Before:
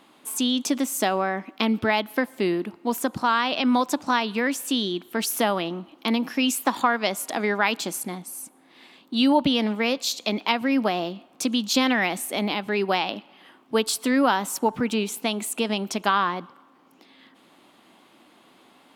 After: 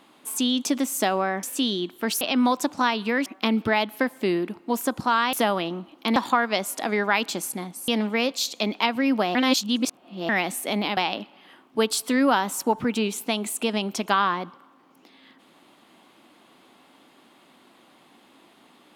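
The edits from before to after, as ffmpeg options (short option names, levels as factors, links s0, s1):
-filter_complex "[0:a]asplit=10[s0][s1][s2][s3][s4][s5][s6][s7][s8][s9];[s0]atrim=end=1.432[s10];[s1]atrim=start=4.548:end=5.332[s11];[s2]atrim=start=3.498:end=4.552[s12];[s3]atrim=start=1.428:end=3.502[s13];[s4]atrim=start=5.328:end=6.162[s14];[s5]atrim=start=6.668:end=8.392[s15];[s6]atrim=start=9.538:end=11.012[s16];[s7]atrim=start=11.008:end=11.952,asetpts=PTS-STARTPTS,areverse[s17];[s8]atrim=start=11.948:end=12.632[s18];[s9]atrim=start=12.928[s19];[s10][s11]acrossfade=d=0.004:c1=hsin:c2=hsin[s20];[s20][s12]acrossfade=d=0.004:c1=hsin:c2=hsin[s21];[s21][s13]acrossfade=d=0.004:c1=hsin:c2=hsin[s22];[s22][s14]acrossfade=d=0.004:c1=hsin:c2=hsin[s23];[s23][s15]acrossfade=d=0.004:c1=hsin:c2=hsin[s24];[s24][s16]acrossfade=d=0.004:c1=hsin:c2=hsin[s25];[s25][s17]acrossfade=d=0.004:c1=hsin:c2=hsin[s26];[s26][s18]acrossfade=d=0.004:c1=hsin:c2=hsin[s27];[s27][s19]acrossfade=d=0.004:c1=hsin:c2=hsin"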